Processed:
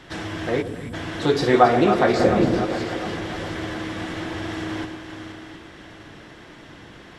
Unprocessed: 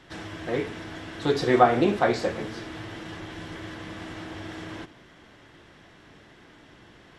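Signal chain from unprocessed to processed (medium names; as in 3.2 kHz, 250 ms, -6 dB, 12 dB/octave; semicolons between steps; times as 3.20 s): backward echo that repeats 355 ms, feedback 57%, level -10 dB; 0.62–0.94 s: spectral selection erased 300–7200 Hz; 2.19–2.65 s: bass shelf 450 Hz +10 dB; in parallel at -2 dB: compression, threshold -32 dBFS, peak gain reduction 19 dB; on the sum: two-band feedback delay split 930 Hz, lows 126 ms, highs 273 ms, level -11 dB; trim +2 dB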